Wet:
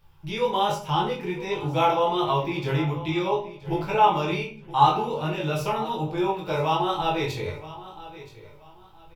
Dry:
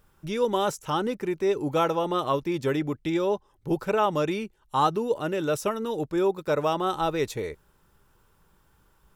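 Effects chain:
flat-topped bell 1,500 Hz −10 dB 1.1 octaves
notch filter 4,100 Hz, Q 30
on a send: repeating echo 975 ms, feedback 26%, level −16.5 dB
on the sum: rectangular room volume 38 cubic metres, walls mixed, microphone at 0.69 metres
chorus effect 1.3 Hz, delay 19.5 ms, depth 2.8 ms
octave-band graphic EQ 125/250/500/1,000/2,000/4,000/8,000 Hz +6/−6/−5/+10/+8/+6/−7 dB
level −1 dB

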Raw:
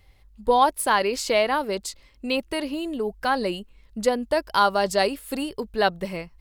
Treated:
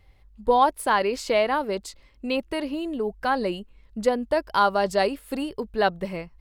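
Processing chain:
high-shelf EQ 3,400 Hz −8 dB

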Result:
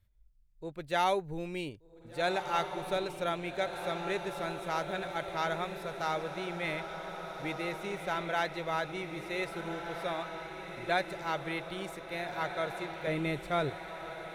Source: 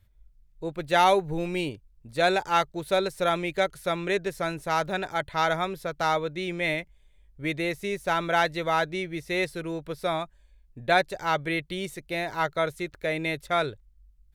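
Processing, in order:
0:13.07–0:13.70: low-shelf EQ 450 Hz +10 dB
feedback delay with all-pass diffusion 1,598 ms, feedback 56%, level −7 dB
level −8.5 dB

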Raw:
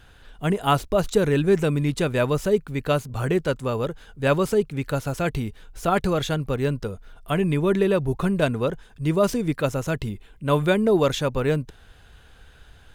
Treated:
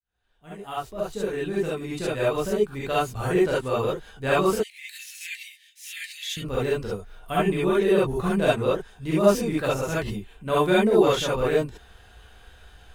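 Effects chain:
fade in at the beginning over 3.27 s
0:04.55–0:06.37: Butterworth high-pass 1,800 Hz 96 dB per octave
reverb whose tail is shaped and stops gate 90 ms rising, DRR −8 dB
level −7 dB

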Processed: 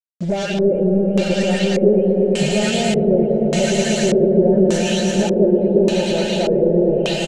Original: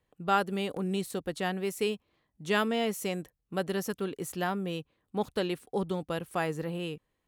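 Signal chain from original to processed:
every frequency bin delayed by itself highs late, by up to 466 ms
camcorder AGC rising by 34 dB per second
high-frequency loss of the air 99 metres
echo with a time of its own for lows and highs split 460 Hz, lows 527 ms, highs 176 ms, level −10 dB
leveller curve on the samples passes 3
comb filter 3.3 ms, depth 55%
brickwall limiter −16.5 dBFS, peak gain reduction 4 dB
parametric band 290 Hz +4.5 dB 1.9 octaves
phaser with its sweep stopped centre 300 Hz, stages 6
centre clipping without the shift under −40 dBFS
on a send: echo that builds up and dies away 112 ms, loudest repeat 5, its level −8.5 dB
on the sum: auto-filter low-pass square 0.85 Hz 450–7,000 Hz
level +2.5 dB

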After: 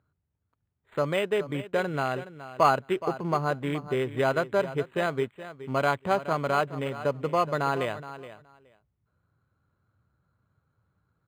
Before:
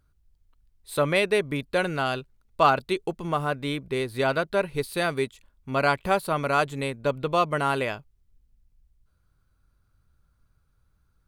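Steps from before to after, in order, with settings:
adaptive Wiener filter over 9 samples
in parallel at −1 dB: downward compressor, threshold −32 dBFS, peak gain reduction 17 dB
on the sum: low-pass filter 4,000 Hz 12 dB per octave
speech leveller 2 s
high-pass filter 96 Hz 24 dB per octave
parametric band 240 Hz −2.5 dB 1.4 octaves
on a send: repeating echo 421 ms, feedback 15%, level −14 dB
on the sum: noise that follows the level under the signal 33 dB
linearly interpolated sample-rate reduction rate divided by 8×
level −2.5 dB

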